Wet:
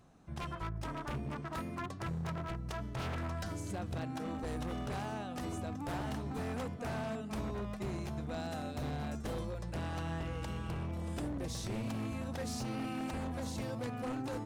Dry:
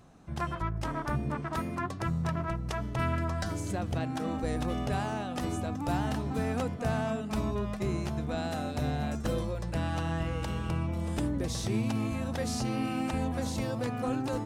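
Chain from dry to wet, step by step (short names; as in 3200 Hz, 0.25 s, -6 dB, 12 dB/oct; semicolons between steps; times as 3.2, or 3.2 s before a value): wavefolder -26 dBFS; gain -6 dB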